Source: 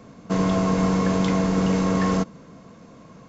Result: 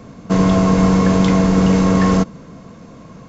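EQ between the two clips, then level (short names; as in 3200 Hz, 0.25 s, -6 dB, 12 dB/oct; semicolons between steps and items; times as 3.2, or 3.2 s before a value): low shelf 130 Hz +6.5 dB; +6.0 dB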